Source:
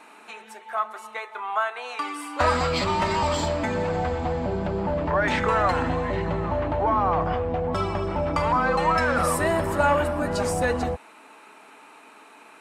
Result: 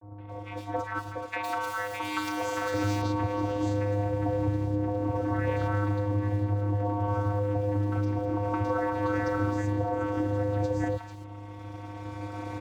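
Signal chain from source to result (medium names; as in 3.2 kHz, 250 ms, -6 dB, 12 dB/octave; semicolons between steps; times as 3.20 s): recorder AGC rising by 7.5 dB/s; hum 50 Hz, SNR 26 dB; in parallel at -11 dB: decimation with a swept rate 30×, swing 60% 2 Hz; on the sum: vocoder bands 16, square 102 Hz; crossover distortion -52 dBFS; compression 6:1, threshold -31 dBFS, peak gain reduction 13.5 dB; 1.16–2.74 s: tilt EQ +3.5 dB/octave; three bands offset in time lows, mids, highs 170/280 ms, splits 980/3200 Hz; trim +6.5 dB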